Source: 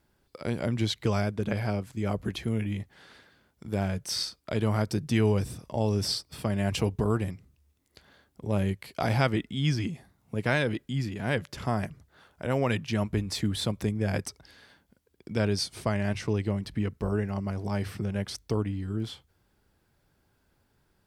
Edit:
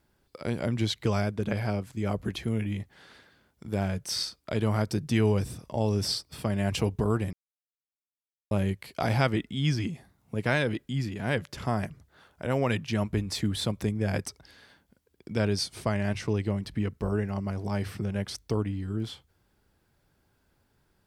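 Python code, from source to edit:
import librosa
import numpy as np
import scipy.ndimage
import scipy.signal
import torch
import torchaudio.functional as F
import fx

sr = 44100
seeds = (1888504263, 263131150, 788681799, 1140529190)

y = fx.edit(x, sr, fx.silence(start_s=7.33, length_s=1.18), tone=tone)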